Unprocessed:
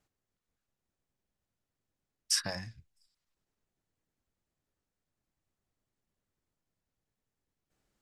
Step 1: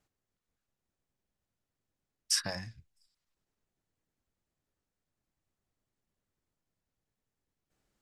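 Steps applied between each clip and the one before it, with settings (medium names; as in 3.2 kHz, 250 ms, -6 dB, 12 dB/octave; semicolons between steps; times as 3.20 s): no audible change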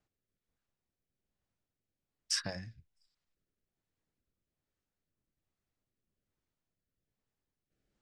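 rotary cabinet horn 1.2 Hz; distance through air 63 m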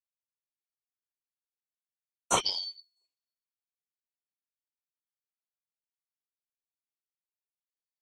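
four frequency bands reordered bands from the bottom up 4321; three bands expanded up and down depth 100%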